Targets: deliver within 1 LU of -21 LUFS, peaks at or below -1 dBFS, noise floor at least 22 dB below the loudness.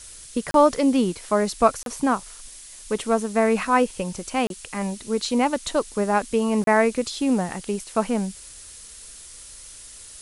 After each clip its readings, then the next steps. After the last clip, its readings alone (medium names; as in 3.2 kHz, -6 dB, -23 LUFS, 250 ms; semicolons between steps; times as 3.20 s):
dropouts 4; longest dropout 32 ms; noise floor -43 dBFS; noise floor target -45 dBFS; loudness -23.0 LUFS; peak level -4.0 dBFS; loudness target -21.0 LUFS
-> interpolate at 0.51/1.83/4.47/6.64 s, 32 ms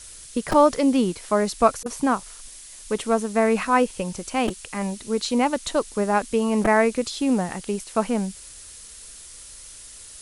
dropouts 0; noise floor -43 dBFS; noise floor target -45 dBFS
-> noise reduction 6 dB, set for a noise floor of -43 dBFS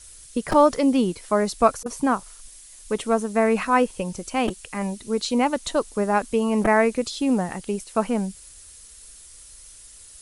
noise floor -46 dBFS; loudness -23.0 LUFS; peak level -4.5 dBFS; loudness target -21.0 LUFS
-> trim +2 dB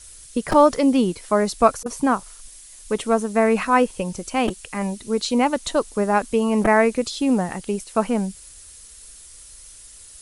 loudness -21.0 LUFS; peak level -2.5 dBFS; noise floor -44 dBFS